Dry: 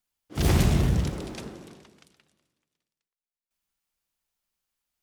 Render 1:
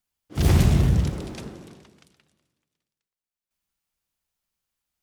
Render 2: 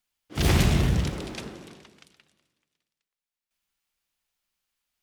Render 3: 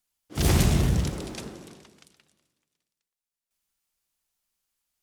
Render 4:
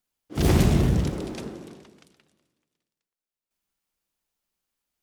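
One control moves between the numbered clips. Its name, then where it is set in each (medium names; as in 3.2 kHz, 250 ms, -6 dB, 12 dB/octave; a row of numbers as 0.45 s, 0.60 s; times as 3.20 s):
peaking EQ, frequency: 93 Hz, 2.7 kHz, 9.4 kHz, 320 Hz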